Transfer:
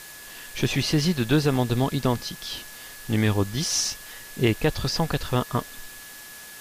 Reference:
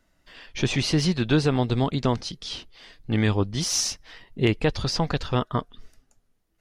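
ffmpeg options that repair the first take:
-af "adeclick=t=4,bandreject=f=1.7k:w=30,afftdn=nr=21:nf=-42"

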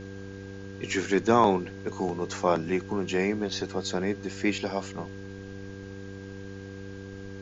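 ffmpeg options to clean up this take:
-af "bandreject=f=97.6:t=h:w=4,bandreject=f=195.2:t=h:w=4,bandreject=f=292.8:t=h:w=4,bandreject=f=390.4:t=h:w=4,bandreject=f=488:t=h:w=4,bandreject=f=1.6k:w=30,afftdn=nr=30:nf=-41"

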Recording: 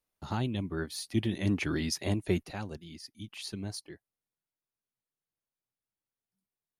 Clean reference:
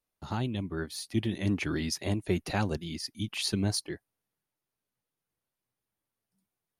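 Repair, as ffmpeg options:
-af "asetnsamples=n=441:p=0,asendcmd='2.43 volume volume 9.5dB',volume=0dB"

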